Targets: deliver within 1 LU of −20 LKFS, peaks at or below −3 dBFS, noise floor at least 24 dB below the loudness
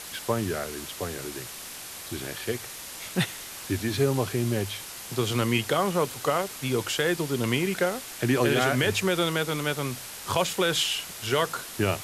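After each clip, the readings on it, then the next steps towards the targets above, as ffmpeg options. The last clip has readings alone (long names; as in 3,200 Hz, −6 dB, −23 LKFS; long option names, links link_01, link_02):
background noise floor −40 dBFS; target noise floor −52 dBFS; integrated loudness −27.5 LKFS; sample peak −11.5 dBFS; target loudness −20.0 LKFS
→ -af "afftdn=noise_reduction=12:noise_floor=-40"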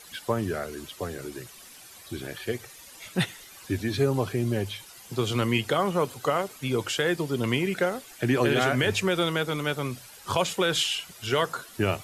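background noise floor −48 dBFS; target noise floor −52 dBFS
→ -af "afftdn=noise_reduction=6:noise_floor=-48"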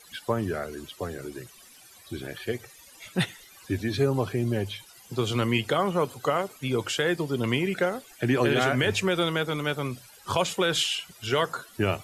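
background noise floor −52 dBFS; integrated loudness −27.5 LKFS; sample peak −12.0 dBFS; target loudness −20.0 LKFS
→ -af "volume=7.5dB"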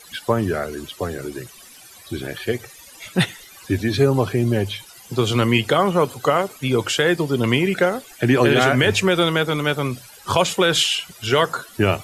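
integrated loudness −20.0 LKFS; sample peak −4.5 dBFS; background noise floor −45 dBFS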